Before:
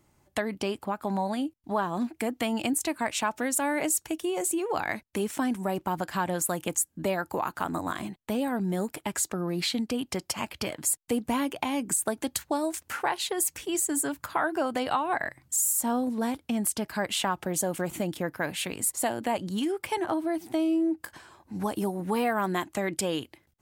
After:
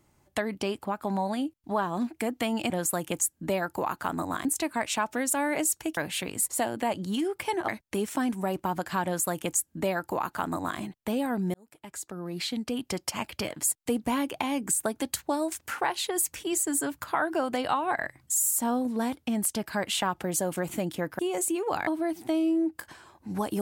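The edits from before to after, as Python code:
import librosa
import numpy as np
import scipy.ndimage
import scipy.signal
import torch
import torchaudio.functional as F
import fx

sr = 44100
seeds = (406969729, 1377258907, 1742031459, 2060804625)

y = fx.edit(x, sr, fx.swap(start_s=4.22, length_s=0.68, other_s=18.41, other_length_s=1.71),
    fx.duplicate(start_s=6.26, length_s=1.75, to_s=2.7),
    fx.fade_in_span(start_s=8.76, length_s=1.4), tone=tone)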